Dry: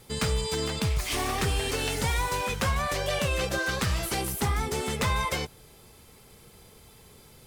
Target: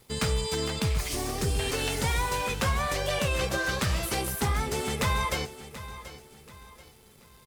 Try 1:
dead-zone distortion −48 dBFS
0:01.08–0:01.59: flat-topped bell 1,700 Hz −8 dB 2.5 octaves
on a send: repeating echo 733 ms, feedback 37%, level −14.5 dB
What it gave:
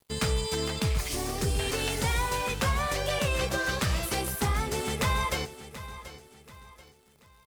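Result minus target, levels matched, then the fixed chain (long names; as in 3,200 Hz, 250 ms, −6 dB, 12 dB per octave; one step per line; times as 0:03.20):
dead-zone distortion: distortion +7 dB
dead-zone distortion −56.5 dBFS
0:01.08–0:01.59: flat-topped bell 1,700 Hz −8 dB 2.5 octaves
on a send: repeating echo 733 ms, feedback 37%, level −14.5 dB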